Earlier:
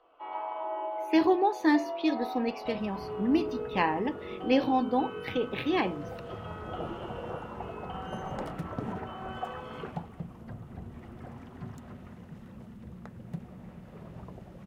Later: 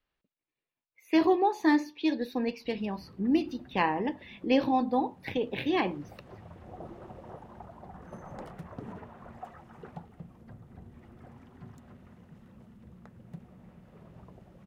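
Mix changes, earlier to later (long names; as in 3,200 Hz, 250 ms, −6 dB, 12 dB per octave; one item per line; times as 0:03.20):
first sound: muted
second sound −6.5 dB
reverb: off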